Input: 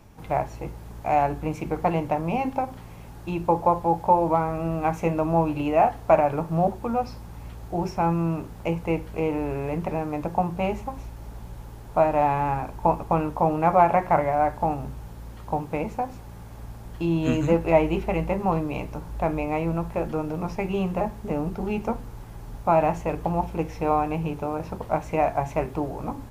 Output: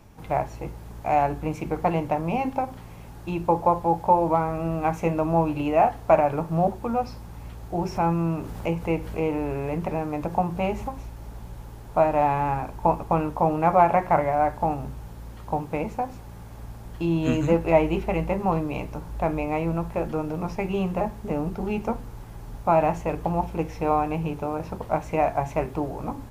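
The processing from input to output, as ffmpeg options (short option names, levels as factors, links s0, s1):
-filter_complex "[0:a]asplit=3[s0][s1][s2];[s0]afade=t=out:st=7.89:d=0.02[s3];[s1]acompressor=mode=upward:threshold=0.0501:ratio=2.5:attack=3.2:release=140:knee=2.83:detection=peak,afade=t=in:st=7.89:d=0.02,afade=t=out:st=10.9:d=0.02[s4];[s2]afade=t=in:st=10.9:d=0.02[s5];[s3][s4][s5]amix=inputs=3:normalize=0"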